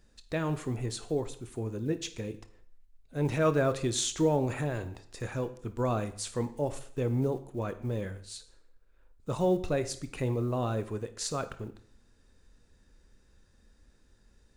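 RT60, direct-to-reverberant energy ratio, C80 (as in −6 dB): 0.55 s, 10.5 dB, 17.5 dB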